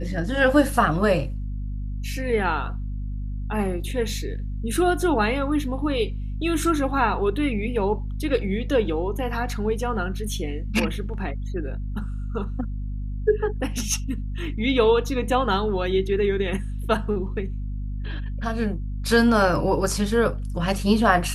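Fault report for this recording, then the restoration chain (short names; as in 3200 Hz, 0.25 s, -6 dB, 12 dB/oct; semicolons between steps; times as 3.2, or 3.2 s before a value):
hum 50 Hz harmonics 5 -29 dBFS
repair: de-hum 50 Hz, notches 5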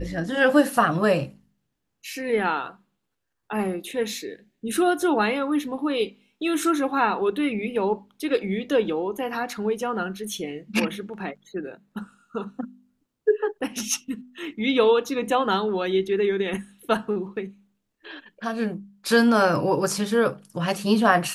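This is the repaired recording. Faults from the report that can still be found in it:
none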